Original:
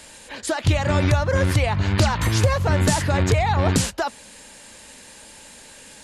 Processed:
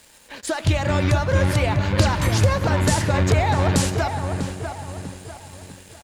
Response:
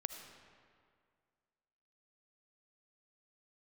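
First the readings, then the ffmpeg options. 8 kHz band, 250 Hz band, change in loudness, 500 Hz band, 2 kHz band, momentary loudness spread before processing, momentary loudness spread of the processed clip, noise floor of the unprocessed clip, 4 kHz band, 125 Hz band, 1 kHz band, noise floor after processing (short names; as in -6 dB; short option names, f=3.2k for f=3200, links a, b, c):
-0.5 dB, +0.5 dB, 0.0 dB, +0.5 dB, 0.0 dB, 8 LU, 15 LU, -45 dBFS, -0.5 dB, +0.5 dB, +0.5 dB, -50 dBFS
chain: -filter_complex "[0:a]asplit=2[a][b];[b]adelay=647,lowpass=f=2k:p=1,volume=-6dB,asplit=2[c][d];[d]adelay=647,lowpass=f=2k:p=1,volume=0.46,asplit=2[e][f];[f]adelay=647,lowpass=f=2k:p=1,volume=0.46,asplit=2[g][h];[h]adelay=647,lowpass=f=2k:p=1,volume=0.46,asplit=2[i][j];[j]adelay=647,lowpass=f=2k:p=1,volume=0.46,asplit=2[k][l];[l]adelay=647,lowpass=f=2k:p=1,volume=0.46[m];[a][c][e][g][i][k][m]amix=inputs=7:normalize=0,asplit=2[n][o];[1:a]atrim=start_sample=2205[p];[o][p]afir=irnorm=-1:irlink=0,volume=0dB[q];[n][q]amix=inputs=2:normalize=0,aeval=exprs='sgn(val(0))*max(abs(val(0))-0.00944,0)':c=same,volume=-5.5dB"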